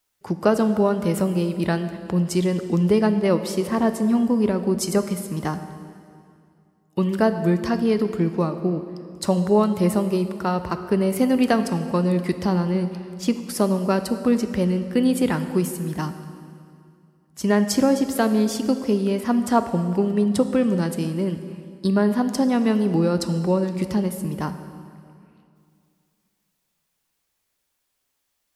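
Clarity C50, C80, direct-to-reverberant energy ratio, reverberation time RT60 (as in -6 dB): 10.0 dB, 11.0 dB, 9.0 dB, 2.4 s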